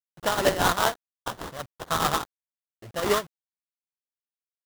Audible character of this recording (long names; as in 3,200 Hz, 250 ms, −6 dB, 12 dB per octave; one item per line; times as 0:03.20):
aliases and images of a low sample rate 2,400 Hz, jitter 20%
tremolo triangle 4.9 Hz, depth 80%
a quantiser's noise floor 10 bits, dither none